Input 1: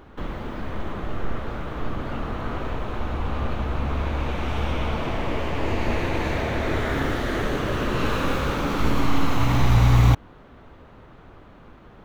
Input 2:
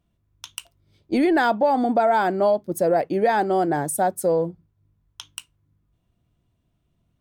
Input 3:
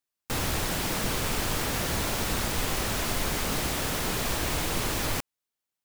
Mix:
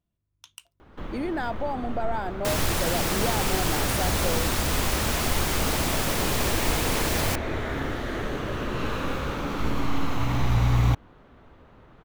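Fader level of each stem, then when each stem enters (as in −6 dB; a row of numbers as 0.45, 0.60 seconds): −5.0, −11.0, +2.5 decibels; 0.80, 0.00, 2.15 seconds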